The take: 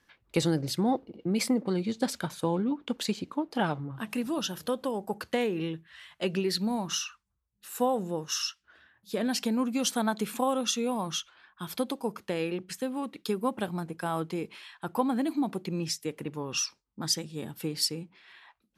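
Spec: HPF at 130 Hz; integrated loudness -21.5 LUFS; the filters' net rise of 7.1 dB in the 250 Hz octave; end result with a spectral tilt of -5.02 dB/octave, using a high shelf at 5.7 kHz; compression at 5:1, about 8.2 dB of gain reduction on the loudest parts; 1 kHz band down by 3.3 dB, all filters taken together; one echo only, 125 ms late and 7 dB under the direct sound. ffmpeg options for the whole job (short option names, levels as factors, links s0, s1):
-af "highpass=130,equalizer=f=250:t=o:g=9,equalizer=f=1000:t=o:g=-5,highshelf=f=5700:g=-4.5,acompressor=threshold=0.0631:ratio=5,aecho=1:1:125:0.447,volume=2.66"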